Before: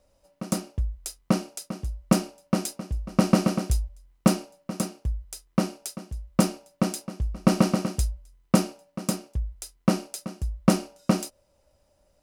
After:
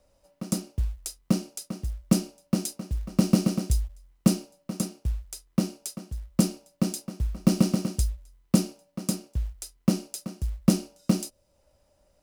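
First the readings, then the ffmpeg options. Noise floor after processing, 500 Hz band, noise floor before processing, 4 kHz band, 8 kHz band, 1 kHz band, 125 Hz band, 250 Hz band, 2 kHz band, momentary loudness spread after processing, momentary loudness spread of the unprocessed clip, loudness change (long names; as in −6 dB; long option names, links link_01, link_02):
−68 dBFS, −5.5 dB, −67 dBFS, −1.0 dB, 0.0 dB, −10.0 dB, 0.0 dB, −0.5 dB, −7.5 dB, 12 LU, 13 LU, −1.0 dB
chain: -filter_complex "[0:a]acrusher=bits=7:mode=log:mix=0:aa=0.000001,acrossover=split=420|3000[link_01][link_02][link_03];[link_02]acompressor=threshold=-59dB:ratio=1.5[link_04];[link_01][link_04][link_03]amix=inputs=3:normalize=0"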